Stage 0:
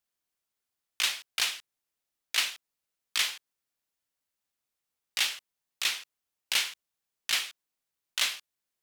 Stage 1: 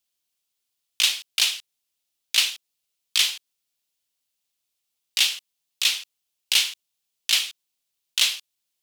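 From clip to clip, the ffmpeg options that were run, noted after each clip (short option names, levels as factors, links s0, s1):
-af "highshelf=f=2300:t=q:w=1.5:g=7"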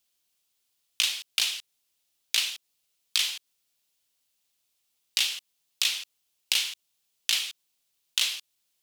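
-af "acompressor=threshold=0.0447:ratio=5,volume=1.58"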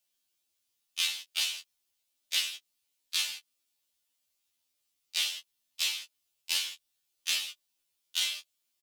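-filter_complex "[0:a]asplit=2[s0][s1];[s1]adelay=15,volume=0.398[s2];[s0][s2]amix=inputs=2:normalize=0,afftfilt=real='re*2*eq(mod(b,4),0)':imag='im*2*eq(mod(b,4),0)':win_size=2048:overlap=0.75,volume=0.75"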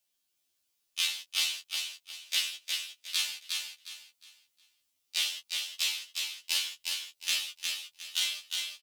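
-af "aecho=1:1:360|720|1080|1440:0.631|0.183|0.0531|0.0154"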